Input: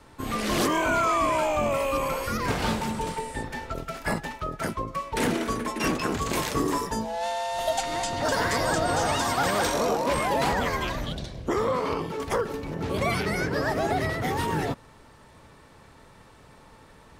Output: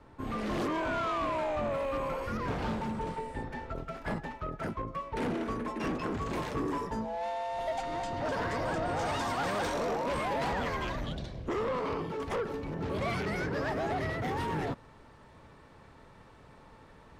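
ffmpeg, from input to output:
-af "asetnsamples=n=441:p=0,asendcmd='8.99 lowpass f 2800',lowpass=f=1300:p=1,asoftclip=type=tanh:threshold=0.0562,volume=0.75"

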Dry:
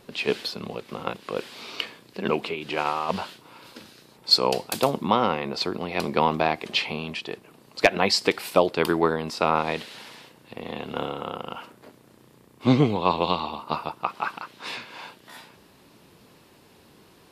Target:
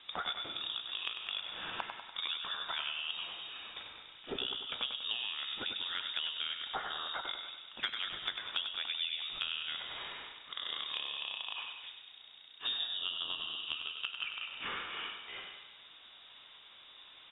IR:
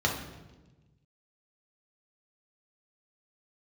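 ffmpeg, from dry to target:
-filter_complex "[0:a]equalizer=f=82:t=o:w=2.8:g=-8,bandreject=f=114.7:t=h:w=4,bandreject=f=229.4:t=h:w=4,bandreject=f=344.1:t=h:w=4,bandreject=f=458.8:t=h:w=4,bandreject=f=573.5:t=h:w=4,bandreject=f=688.2:t=h:w=4,bandreject=f=802.9:t=h:w=4,bandreject=f=917.6:t=h:w=4,bandreject=f=1032.3:t=h:w=4,bandreject=f=1147:t=h:w=4,bandreject=f=1261.7:t=h:w=4,bandreject=f=1376.4:t=h:w=4,bandreject=f=1491.1:t=h:w=4,bandreject=f=1605.8:t=h:w=4,bandreject=f=1720.5:t=h:w=4,bandreject=f=1835.2:t=h:w=4,bandreject=f=1949.9:t=h:w=4,bandreject=f=2064.6:t=h:w=4,bandreject=f=2179.3:t=h:w=4,bandreject=f=2294:t=h:w=4,bandreject=f=2408.7:t=h:w=4,bandreject=f=2523.4:t=h:w=4,bandreject=f=2638.1:t=h:w=4,asplit=2[s0][s1];[1:a]atrim=start_sample=2205,adelay=105[s2];[s1][s2]afir=irnorm=-1:irlink=0,volume=0.0631[s3];[s0][s3]amix=inputs=2:normalize=0,lowpass=f=3300:t=q:w=0.5098,lowpass=f=3300:t=q:w=0.6013,lowpass=f=3300:t=q:w=0.9,lowpass=f=3300:t=q:w=2.563,afreqshift=-3900,acompressor=threshold=0.0158:ratio=6,asplit=2[s4][s5];[s5]aecho=0:1:97|194|291|388|485|582:0.422|0.223|0.118|0.0628|0.0333|0.0176[s6];[s4][s6]amix=inputs=2:normalize=0"

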